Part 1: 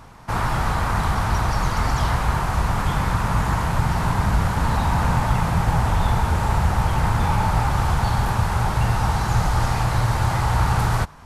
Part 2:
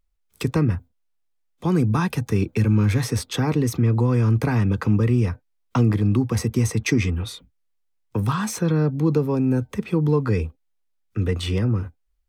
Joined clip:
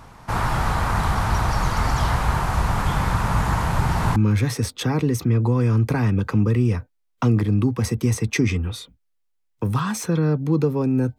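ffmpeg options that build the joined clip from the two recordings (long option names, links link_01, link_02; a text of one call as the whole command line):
ffmpeg -i cue0.wav -i cue1.wav -filter_complex "[1:a]asplit=2[link_01][link_02];[0:a]apad=whole_dur=11.18,atrim=end=11.18,atrim=end=4.162[link_03];[link_02]atrim=start=2.688:end=9.71[link_04];[link_01]atrim=start=2.2:end=2.69,asetpts=PTS-STARTPTS,volume=-15dB,afade=type=in:duration=0.004:curve=hsin,afade=type=out:start_time=0.486:duration=0.004:curve=hsin,adelay=3670[link_05];[link_03][link_04]acrossfade=duration=0.004:curve1=hsin:curve2=hsin[link_06];[link_06][link_05]amix=inputs=2:normalize=0" out.wav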